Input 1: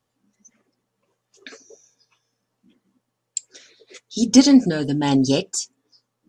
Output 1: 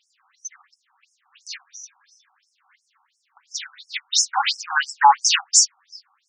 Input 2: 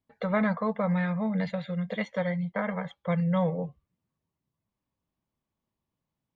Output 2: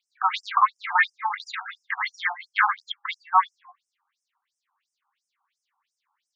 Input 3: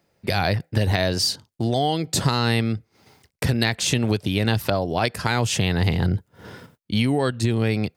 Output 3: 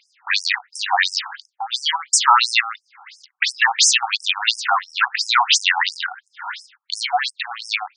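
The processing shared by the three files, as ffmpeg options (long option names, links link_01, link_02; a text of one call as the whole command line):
ffmpeg -i in.wav -filter_complex "[0:a]asplit=2[link_01][link_02];[link_02]highpass=frequency=720:poles=1,volume=23dB,asoftclip=type=tanh:threshold=-1dB[link_03];[link_01][link_03]amix=inputs=2:normalize=0,lowpass=frequency=3600:poles=1,volume=-6dB,afftfilt=real='re*between(b*sr/1024,980*pow(7300/980,0.5+0.5*sin(2*PI*2.9*pts/sr))/1.41,980*pow(7300/980,0.5+0.5*sin(2*PI*2.9*pts/sr))*1.41)':imag='im*between(b*sr/1024,980*pow(7300/980,0.5+0.5*sin(2*PI*2.9*pts/sr))/1.41,980*pow(7300/980,0.5+0.5*sin(2*PI*2.9*pts/sr))*1.41)':win_size=1024:overlap=0.75,volume=5dB" out.wav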